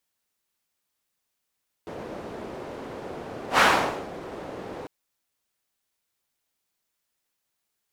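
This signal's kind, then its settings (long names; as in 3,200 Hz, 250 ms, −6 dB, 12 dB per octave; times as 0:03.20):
pass-by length 3.00 s, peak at 0:01.72, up 0.11 s, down 0.54 s, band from 460 Hz, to 1,300 Hz, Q 1.1, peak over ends 20 dB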